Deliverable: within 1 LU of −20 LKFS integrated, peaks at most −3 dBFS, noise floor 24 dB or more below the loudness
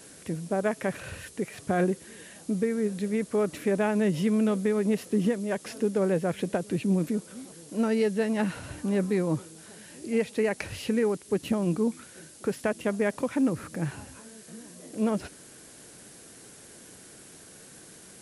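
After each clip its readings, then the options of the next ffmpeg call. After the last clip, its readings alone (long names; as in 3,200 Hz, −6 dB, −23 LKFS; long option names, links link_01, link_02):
background noise floor −50 dBFS; target noise floor −53 dBFS; integrated loudness −28.5 LKFS; sample peak −14.5 dBFS; target loudness −20.0 LKFS
→ -af "afftdn=noise_reduction=6:noise_floor=-50"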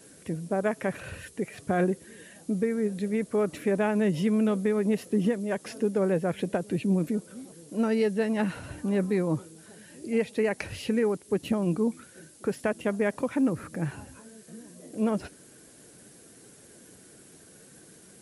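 background noise floor −53 dBFS; integrated loudness −28.5 LKFS; sample peak −14.5 dBFS; target loudness −20.0 LKFS
→ -af "volume=8.5dB"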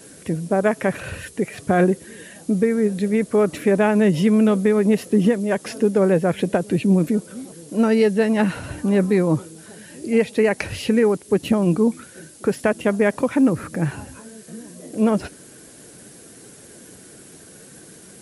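integrated loudness −20.0 LKFS; sample peak −6.0 dBFS; background noise floor −45 dBFS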